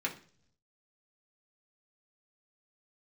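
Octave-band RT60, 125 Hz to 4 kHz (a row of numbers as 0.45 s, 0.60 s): 1.1 s, 0.80 s, 0.60 s, 0.40 s, 0.45 s, 0.55 s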